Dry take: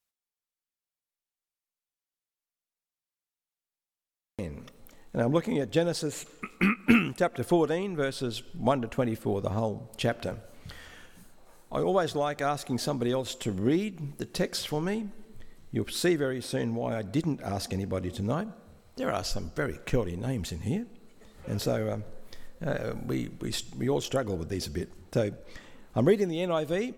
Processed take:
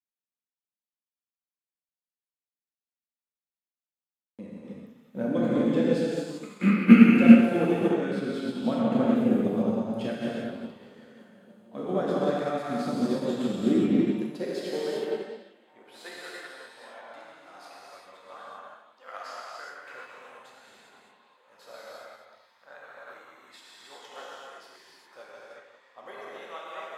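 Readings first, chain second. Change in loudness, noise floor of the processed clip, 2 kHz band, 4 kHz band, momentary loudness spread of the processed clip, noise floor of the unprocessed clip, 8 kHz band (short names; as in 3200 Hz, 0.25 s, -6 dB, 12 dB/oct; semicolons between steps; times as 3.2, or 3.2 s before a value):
+6.5 dB, under -85 dBFS, -0.5 dB, -6.0 dB, 25 LU, under -85 dBFS, under -10 dB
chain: reverse delay 0.127 s, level -6 dB; high shelf 4800 Hz -10 dB; on a send: delay with a stepping band-pass 0.474 s, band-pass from 3100 Hz, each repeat -1.4 oct, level -9.5 dB; on the sum: dynamic EQ 950 Hz, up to -6 dB, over -48 dBFS, Q 3.9; high-pass sweep 220 Hz -> 990 Hz, 13.82–16.33; notch 5700 Hz, Q 16; non-linear reverb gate 0.43 s flat, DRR -6.5 dB; upward expander 1.5:1, over -35 dBFS; gain -2 dB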